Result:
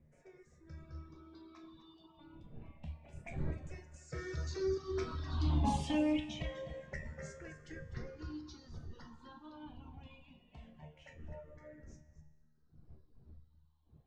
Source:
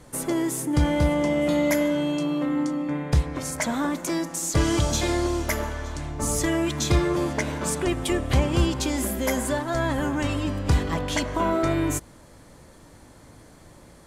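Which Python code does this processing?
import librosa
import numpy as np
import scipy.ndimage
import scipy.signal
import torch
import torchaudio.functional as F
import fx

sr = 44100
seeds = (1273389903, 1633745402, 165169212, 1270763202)

p1 = fx.spec_ripple(x, sr, per_octave=0.53, drift_hz=-0.25, depth_db=15)
p2 = fx.dmg_wind(p1, sr, seeds[0], corner_hz=130.0, level_db=-23.0)
p3 = fx.doppler_pass(p2, sr, speed_mps=32, closest_m=5.3, pass_at_s=5.57)
p4 = scipy.signal.sosfilt(scipy.signal.butter(4, 5300.0, 'lowpass', fs=sr, output='sos'), p3)
p5 = fx.comb_fb(p4, sr, f0_hz=76.0, decay_s=1.4, harmonics='all', damping=0.0, mix_pct=90)
p6 = fx.dynamic_eq(p5, sr, hz=1100.0, q=1.1, threshold_db=-58.0, ratio=4.0, max_db=-6)
p7 = p6 + fx.echo_single(p6, sr, ms=251, db=-9.5, dry=0)
p8 = fx.dereverb_blind(p7, sr, rt60_s=1.6)
y = F.gain(torch.from_numpy(p8), 11.5).numpy()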